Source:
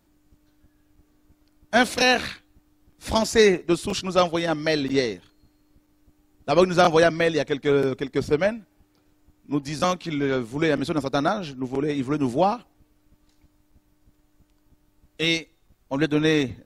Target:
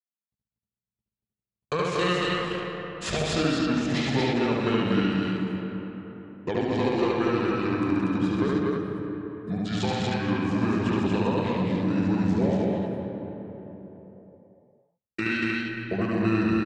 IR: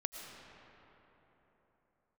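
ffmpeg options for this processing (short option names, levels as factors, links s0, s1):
-filter_complex "[0:a]agate=range=0.00126:threshold=0.00355:ratio=16:detection=peak,highpass=110,acompressor=threshold=0.0178:ratio=5,asetrate=31183,aresample=44100,atempo=1.41421,aecho=1:1:128.3|236.2:0.501|0.794,asplit=2[s0][s1];[1:a]atrim=start_sample=2205,lowpass=5800,adelay=72[s2];[s1][s2]afir=irnorm=-1:irlink=0,volume=1.19[s3];[s0][s3]amix=inputs=2:normalize=0,volume=2"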